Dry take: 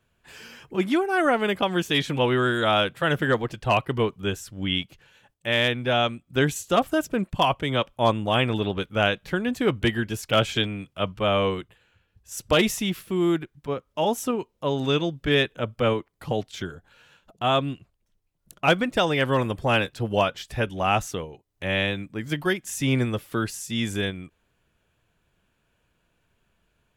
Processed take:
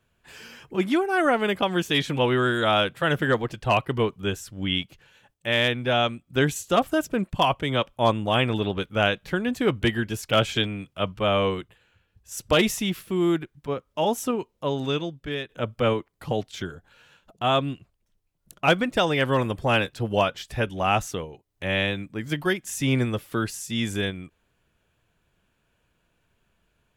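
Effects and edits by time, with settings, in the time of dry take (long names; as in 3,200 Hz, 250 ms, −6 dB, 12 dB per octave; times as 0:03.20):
0:14.56–0:15.49: fade out, to −13.5 dB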